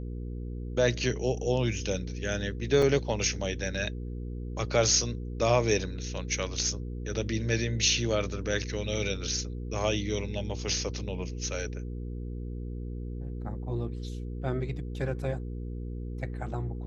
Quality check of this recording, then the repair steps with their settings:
hum 60 Hz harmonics 8 -36 dBFS
2.82 gap 3.9 ms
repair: de-hum 60 Hz, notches 8; interpolate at 2.82, 3.9 ms

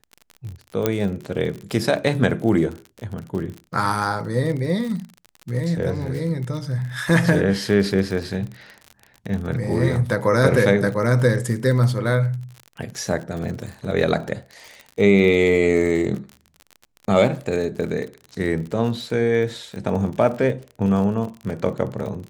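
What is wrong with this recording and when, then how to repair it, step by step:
crackle 46/s -29 dBFS
0.86 pop -5 dBFS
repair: de-click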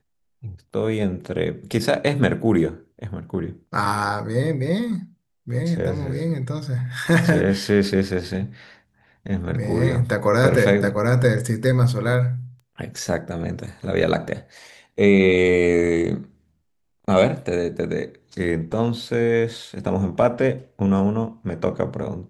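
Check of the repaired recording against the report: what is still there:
none

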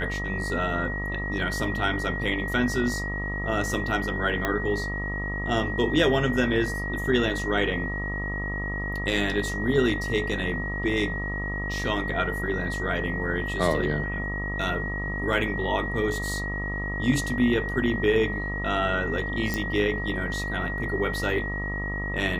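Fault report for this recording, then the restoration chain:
buzz 50 Hz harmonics 26 -32 dBFS
tone 1900 Hz -31 dBFS
4.45 pop -11 dBFS
19.54 pop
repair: de-click; de-hum 50 Hz, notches 26; notch 1900 Hz, Q 30

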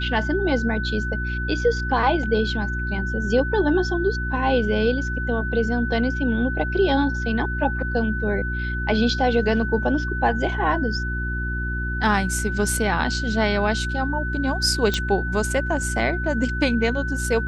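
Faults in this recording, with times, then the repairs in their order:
hum 60 Hz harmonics 6 -27 dBFS
tone 1500 Hz -28 dBFS
14.94 pop -9 dBFS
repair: de-click; notch 1500 Hz, Q 30; de-hum 60 Hz, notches 6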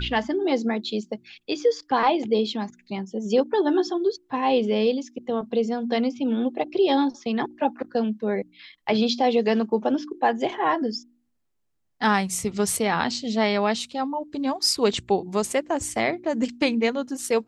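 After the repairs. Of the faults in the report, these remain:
none

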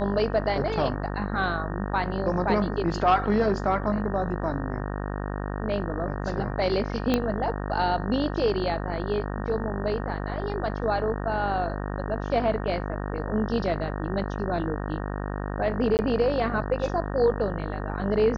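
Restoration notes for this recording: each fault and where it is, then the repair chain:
buzz 50 Hz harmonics 37 -31 dBFS
7.14 pop -10 dBFS
15.97–15.99 gap 19 ms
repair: de-click; de-hum 50 Hz, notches 37; interpolate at 15.97, 19 ms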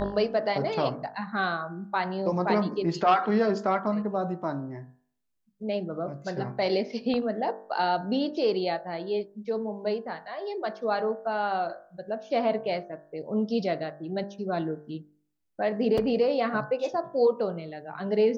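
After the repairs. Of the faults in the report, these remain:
7.14 pop

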